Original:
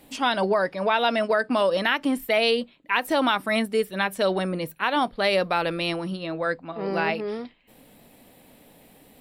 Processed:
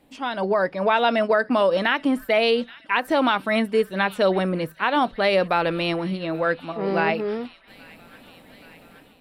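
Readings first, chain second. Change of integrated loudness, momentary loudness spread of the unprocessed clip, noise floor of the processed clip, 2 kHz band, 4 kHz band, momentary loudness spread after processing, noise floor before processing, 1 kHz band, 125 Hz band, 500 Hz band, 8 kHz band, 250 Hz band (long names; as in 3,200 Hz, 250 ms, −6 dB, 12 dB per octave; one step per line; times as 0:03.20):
+2.0 dB, 7 LU, −52 dBFS, +1.5 dB, −1.0 dB, 7 LU, −55 dBFS, +2.0 dB, +3.5 dB, +3.0 dB, can't be measured, +3.0 dB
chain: high-shelf EQ 4,700 Hz −11 dB
on a send: delay with a high-pass on its return 826 ms, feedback 72%, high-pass 1,900 Hz, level −19.5 dB
on the sum: automatic gain control gain up to 9.5 dB
level −5 dB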